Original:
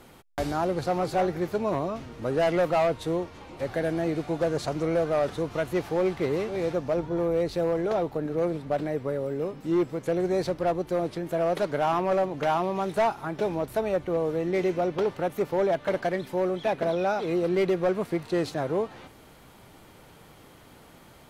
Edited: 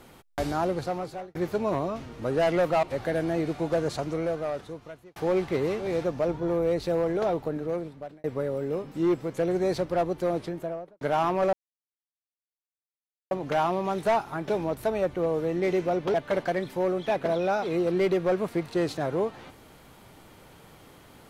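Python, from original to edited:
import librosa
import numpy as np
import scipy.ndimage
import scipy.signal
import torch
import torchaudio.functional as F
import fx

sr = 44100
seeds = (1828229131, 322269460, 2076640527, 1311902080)

y = fx.studio_fade_out(x, sr, start_s=11.06, length_s=0.64)
y = fx.edit(y, sr, fx.fade_out_span(start_s=0.67, length_s=0.68),
    fx.cut(start_s=2.83, length_s=0.69),
    fx.fade_out_span(start_s=4.5, length_s=1.35),
    fx.fade_out_span(start_s=8.14, length_s=0.79),
    fx.insert_silence(at_s=12.22, length_s=1.78),
    fx.cut(start_s=15.05, length_s=0.66), tone=tone)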